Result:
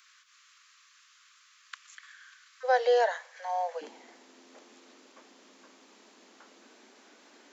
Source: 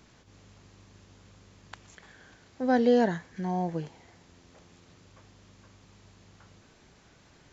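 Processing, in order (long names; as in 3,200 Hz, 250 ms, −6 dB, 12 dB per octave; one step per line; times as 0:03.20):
Butterworth high-pass 1,100 Hz 96 dB per octave, from 0:02.63 490 Hz, from 0:03.81 220 Hz
level +3 dB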